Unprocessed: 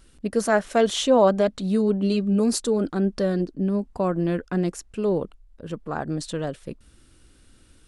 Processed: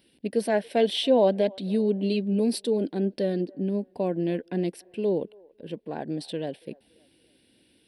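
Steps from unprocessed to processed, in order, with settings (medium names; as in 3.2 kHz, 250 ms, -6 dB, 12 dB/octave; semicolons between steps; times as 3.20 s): high-pass 220 Hz 12 dB/octave; static phaser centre 3 kHz, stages 4; feedback echo behind a band-pass 282 ms, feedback 39%, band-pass 820 Hz, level -24 dB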